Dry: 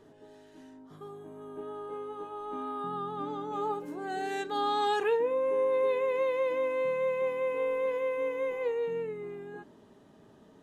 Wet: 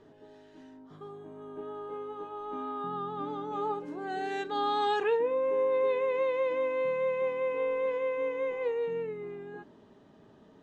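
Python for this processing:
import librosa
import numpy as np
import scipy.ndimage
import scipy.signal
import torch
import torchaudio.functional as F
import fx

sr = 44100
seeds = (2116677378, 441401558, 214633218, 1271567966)

y = scipy.signal.sosfilt(scipy.signal.butter(2, 5300.0, 'lowpass', fs=sr, output='sos'), x)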